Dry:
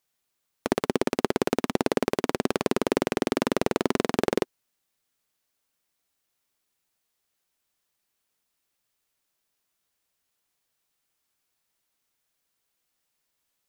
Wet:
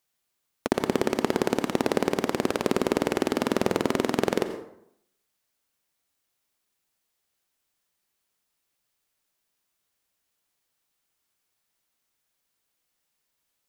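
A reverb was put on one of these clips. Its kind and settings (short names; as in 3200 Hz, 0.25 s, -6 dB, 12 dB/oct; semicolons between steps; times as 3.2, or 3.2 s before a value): plate-style reverb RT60 0.72 s, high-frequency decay 0.6×, pre-delay 75 ms, DRR 9.5 dB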